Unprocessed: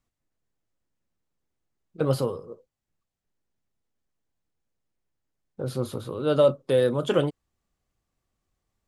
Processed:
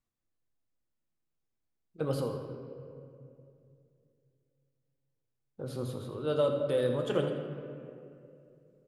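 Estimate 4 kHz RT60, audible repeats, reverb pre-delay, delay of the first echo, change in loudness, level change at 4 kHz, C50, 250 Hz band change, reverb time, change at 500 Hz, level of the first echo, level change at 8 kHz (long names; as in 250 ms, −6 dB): 1.5 s, 1, 3 ms, 82 ms, −8.0 dB, −7.5 dB, 5.0 dB, −6.5 dB, 2.6 s, −7.0 dB, −11.5 dB, −8.0 dB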